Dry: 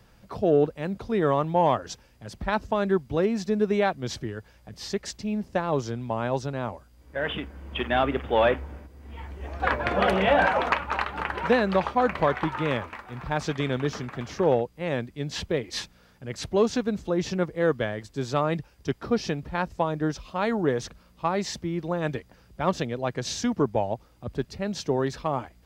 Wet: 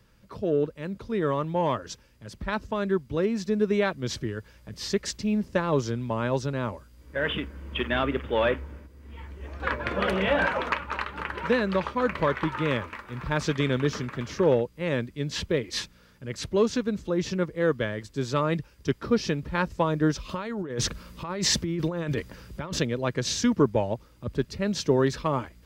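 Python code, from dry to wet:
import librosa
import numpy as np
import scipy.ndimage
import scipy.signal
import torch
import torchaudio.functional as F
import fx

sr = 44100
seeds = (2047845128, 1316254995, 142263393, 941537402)

y = fx.over_compress(x, sr, threshold_db=-34.0, ratio=-1.0, at=(20.29, 22.79))
y = fx.peak_eq(y, sr, hz=750.0, db=-9.5, octaves=0.37)
y = fx.notch(y, sr, hz=730.0, q=14.0)
y = fx.rider(y, sr, range_db=10, speed_s=2.0)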